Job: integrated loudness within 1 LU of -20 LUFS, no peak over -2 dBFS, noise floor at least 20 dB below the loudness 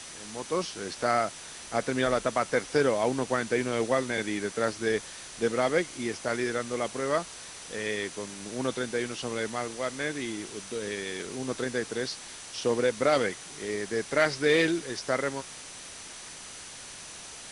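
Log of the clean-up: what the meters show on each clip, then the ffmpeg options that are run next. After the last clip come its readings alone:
steady tone 6000 Hz; tone level -51 dBFS; noise floor -44 dBFS; noise floor target -50 dBFS; loudness -29.5 LUFS; peak -12.5 dBFS; loudness target -20.0 LUFS
-> -af "bandreject=f=6k:w=30"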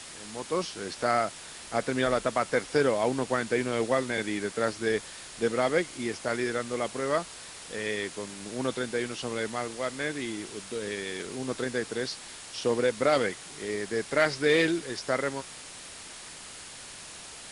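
steady tone none; noise floor -45 dBFS; noise floor target -50 dBFS
-> -af "afftdn=nr=6:nf=-45"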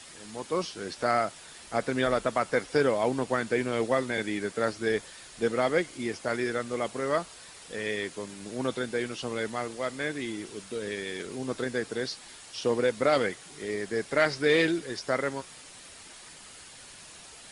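noise floor -49 dBFS; noise floor target -50 dBFS
-> -af "afftdn=nr=6:nf=-49"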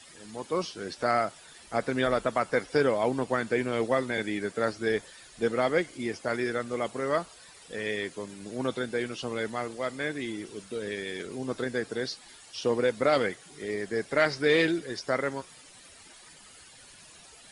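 noise floor -52 dBFS; loudness -29.5 LUFS; peak -12.5 dBFS; loudness target -20.0 LUFS
-> -af "volume=9.5dB"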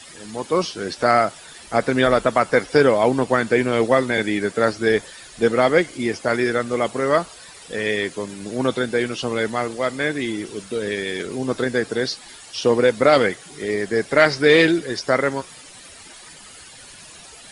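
loudness -20.0 LUFS; peak -3.0 dBFS; noise floor -43 dBFS

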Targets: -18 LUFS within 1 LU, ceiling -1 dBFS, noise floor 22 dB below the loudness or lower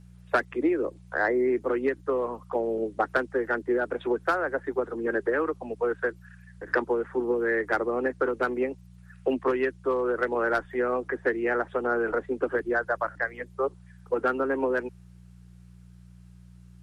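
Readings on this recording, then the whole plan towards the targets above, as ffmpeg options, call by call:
hum 60 Hz; harmonics up to 180 Hz; hum level -47 dBFS; loudness -28.0 LUFS; peak -12.0 dBFS; loudness target -18.0 LUFS
-> -af "bandreject=f=60:t=h:w=4,bandreject=f=120:t=h:w=4,bandreject=f=180:t=h:w=4"
-af "volume=10dB"

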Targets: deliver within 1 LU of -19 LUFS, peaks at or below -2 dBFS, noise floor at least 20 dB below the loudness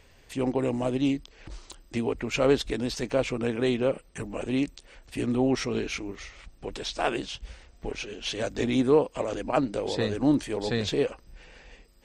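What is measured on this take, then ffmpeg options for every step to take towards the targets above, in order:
loudness -28.0 LUFS; peak -9.5 dBFS; loudness target -19.0 LUFS
-> -af "volume=9dB,alimiter=limit=-2dB:level=0:latency=1"

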